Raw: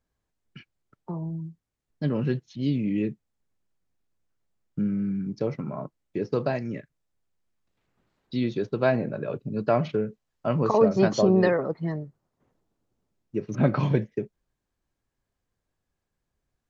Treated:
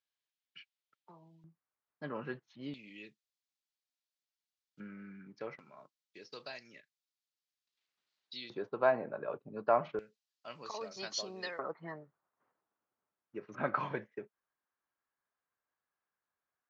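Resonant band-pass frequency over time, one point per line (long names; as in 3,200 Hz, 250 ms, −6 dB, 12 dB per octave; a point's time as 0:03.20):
resonant band-pass, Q 1.6
3,400 Hz
from 0:01.44 1,200 Hz
from 0:02.74 4,300 Hz
from 0:04.80 1,700 Hz
from 0:05.59 4,400 Hz
from 0:08.50 1,000 Hz
from 0:09.99 4,600 Hz
from 0:11.59 1,300 Hz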